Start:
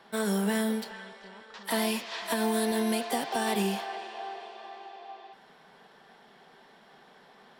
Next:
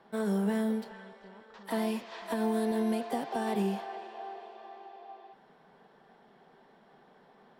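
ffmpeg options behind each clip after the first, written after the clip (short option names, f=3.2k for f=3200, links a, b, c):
-af "tiltshelf=f=1.5k:g=6.5,volume=-7dB"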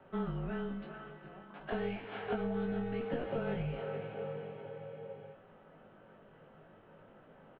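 -filter_complex "[0:a]acompressor=threshold=-34dB:ratio=2.5,asplit=2[a][b];[b]adelay=20,volume=-4dB[c];[a][c]amix=inputs=2:normalize=0,highpass=f=310:t=q:w=0.5412,highpass=f=310:t=q:w=1.307,lowpass=f=3.2k:t=q:w=0.5176,lowpass=f=3.2k:t=q:w=0.7071,lowpass=f=3.2k:t=q:w=1.932,afreqshift=-240,volume=1dB"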